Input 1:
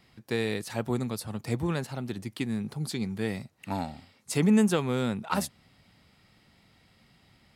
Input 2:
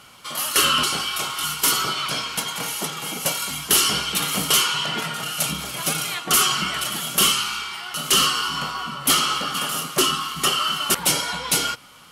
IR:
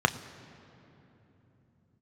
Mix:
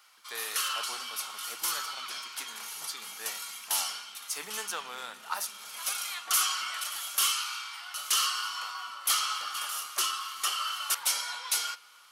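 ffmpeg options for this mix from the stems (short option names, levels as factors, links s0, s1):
-filter_complex "[0:a]aemphasis=mode=production:type=50kf,volume=0.531,asplit=2[s0][s1];[s1]volume=0.299[s2];[1:a]volume=1.19,afade=t=out:st=3.78:d=0.4:silence=0.375837,afade=t=in:st=5.45:d=0.43:silence=0.237137,asplit=2[s3][s4];[s4]volume=0.0891[s5];[2:a]atrim=start_sample=2205[s6];[s2][s5]amix=inputs=2:normalize=0[s7];[s7][s6]afir=irnorm=-1:irlink=0[s8];[s0][s3][s8]amix=inputs=3:normalize=0,highpass=1400"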